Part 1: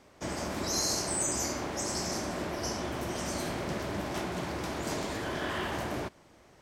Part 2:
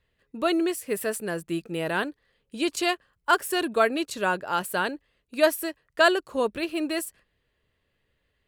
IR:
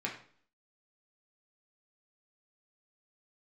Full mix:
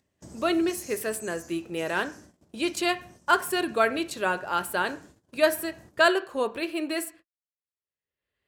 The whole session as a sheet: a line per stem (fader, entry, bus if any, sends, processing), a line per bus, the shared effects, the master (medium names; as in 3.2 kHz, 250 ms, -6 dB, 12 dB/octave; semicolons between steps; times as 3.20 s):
-4.5 dB, 0.00 s, no send, FFT filter 150 Hz 0 dB, 2.4 kHz -19 dB, 7.2 kHz -2 dB; auto duck -8 dB, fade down 1.35 s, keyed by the second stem
-3.0 dB, 0.00 s, send -9 dB, peaking EQ 190 Hz -5.5 dB 1.1 oct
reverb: on, RT60 0.50 s, pre-delay 3 ms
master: gate -49 dBFS, range -51 dB; high-pass 59 Hz; upward compressor, threshold -44 dBFS